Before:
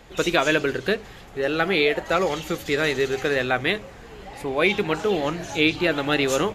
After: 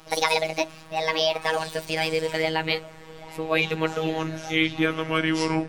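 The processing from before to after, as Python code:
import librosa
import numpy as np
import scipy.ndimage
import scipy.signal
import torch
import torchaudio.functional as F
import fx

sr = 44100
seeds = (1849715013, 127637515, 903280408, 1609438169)

y = fx.speed_glide(x, sr, from_pct=155, to_pct=75)
y = fx.robotise(y, sr, hz=159.0)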